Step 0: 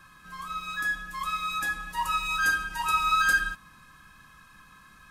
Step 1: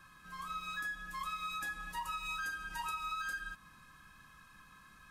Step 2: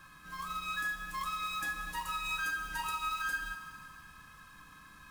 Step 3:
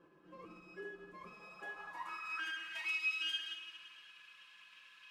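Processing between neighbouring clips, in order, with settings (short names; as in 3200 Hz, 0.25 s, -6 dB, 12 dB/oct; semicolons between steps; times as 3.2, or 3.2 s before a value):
compressor 12:1, threshold -31 dBFS, peak gain reduction 13 dB; gain -5.5 dB
short-mantissa float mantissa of 2-bit; FDN reverb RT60 2.6 s, high-frequency decay 1×, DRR 7 dB; gain +3.5 dB
minimum comb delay 5.9 ms; band-pass sweep 380 Hz -> 2800 Hz, 1.13–2.99; gain +4.5 dB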